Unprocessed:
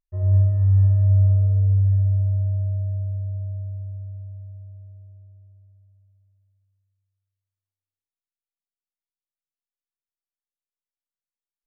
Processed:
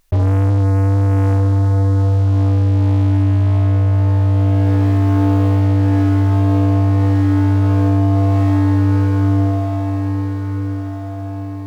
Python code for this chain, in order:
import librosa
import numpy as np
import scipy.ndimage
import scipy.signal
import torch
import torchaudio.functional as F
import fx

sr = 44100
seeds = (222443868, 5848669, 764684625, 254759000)

y = fx.low_shelf(x, sr, hz=150.0, db=-4.5)
y = fx.leveller(y, sr, passes=5)
y = fx.echo_diffused(y, sr, ms=1155, feedback_pct=46, wet_db=-9.5)
y = fx.env_flatten(y, sr, amount_pct=100)